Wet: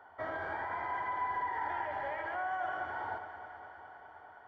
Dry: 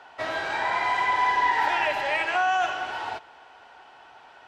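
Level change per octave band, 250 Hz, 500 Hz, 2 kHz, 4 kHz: -8.5, -9.5, -13.5, -24.0 dB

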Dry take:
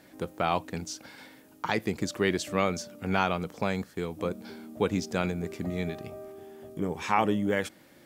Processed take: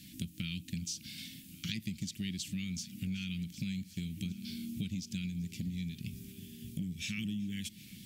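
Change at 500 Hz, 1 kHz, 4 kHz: -31.5 dB, under -40 dB, -2.5 dB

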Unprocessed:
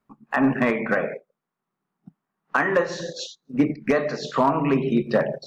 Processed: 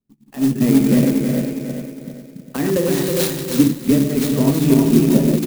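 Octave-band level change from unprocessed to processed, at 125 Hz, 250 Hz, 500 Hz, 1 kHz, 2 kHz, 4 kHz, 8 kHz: +12.5 dB, +10.0 dB, +3.0 dB, -8.0 dB, -6.5 dB, +7.5 dB, n/a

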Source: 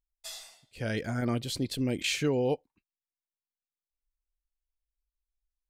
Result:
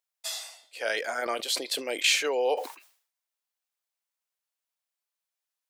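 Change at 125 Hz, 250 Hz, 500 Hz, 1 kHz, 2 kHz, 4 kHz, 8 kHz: under -30 dB, -12.0 dB, +3.0 dB, +8.0 dB, +8.0 dB, +7.5 dB, +7.5 dB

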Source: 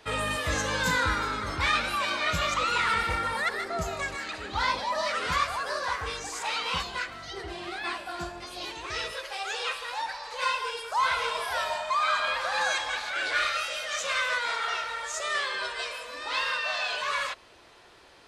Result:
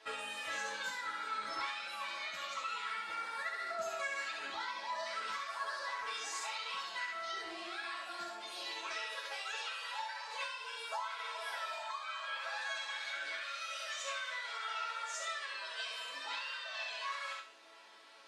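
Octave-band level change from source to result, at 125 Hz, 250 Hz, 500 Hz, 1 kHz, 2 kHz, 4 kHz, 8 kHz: under -35 dB, -19.0 dB, -13.0 dB, -11.5 dB, -11.0 dB, -10.0 dB, -10.0 dB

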